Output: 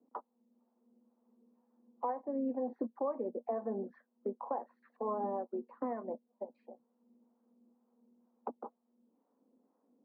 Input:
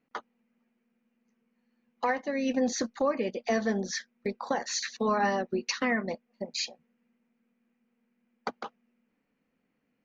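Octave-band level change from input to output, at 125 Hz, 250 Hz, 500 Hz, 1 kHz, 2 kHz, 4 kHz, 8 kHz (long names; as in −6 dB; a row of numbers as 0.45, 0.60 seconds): below −10 dB, −9.0 dB, −7.0 dB, −7.5 dB, −29.5 dB, below −40 dB, can't be measured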